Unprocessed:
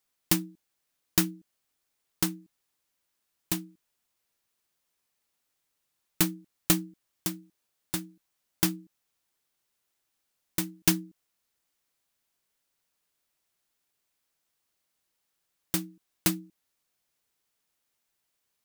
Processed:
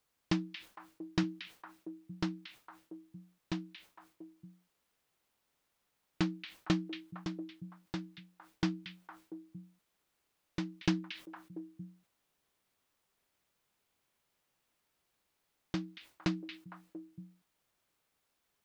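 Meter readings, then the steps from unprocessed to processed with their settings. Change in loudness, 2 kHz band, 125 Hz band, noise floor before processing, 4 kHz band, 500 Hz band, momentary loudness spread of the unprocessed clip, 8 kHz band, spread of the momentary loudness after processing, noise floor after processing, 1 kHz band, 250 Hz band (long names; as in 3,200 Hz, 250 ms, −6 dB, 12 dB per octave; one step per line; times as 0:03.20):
−10.0 dB, −5.5 dB, −3.0 dB, −80 dBFS, −8.5 dB, −3.0 dB, 14 LU, −23.0 dB, 20 LU, −81 dBFS, −4.0 dB, −3.0 dB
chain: inverse Chebyshev low-pass filter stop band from 11,000 Hz, stop band 50 dB
bit-depth reduction 12 bits, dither triangular
high-shelf EQ 2,200 Hz −7.5 dB
on a send: echo through a band-pass that steps 229 ms, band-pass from 2,800 Hz, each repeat −1.4 octaves, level −4 dB
on the sum: level that may fall only so fast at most 150 dB per second
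level −3.5 dB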